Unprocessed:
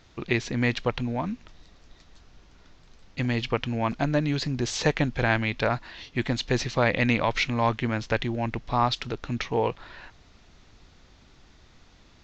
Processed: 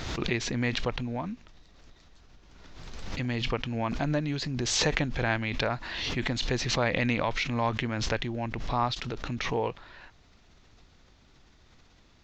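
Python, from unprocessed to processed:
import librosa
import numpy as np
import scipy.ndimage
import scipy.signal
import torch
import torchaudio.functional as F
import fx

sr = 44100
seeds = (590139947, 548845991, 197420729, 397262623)

y = fx.pre_swell(x, sr, db_per_s=34.0)
y = y * 10.0 ** (-5.0 / 20.0)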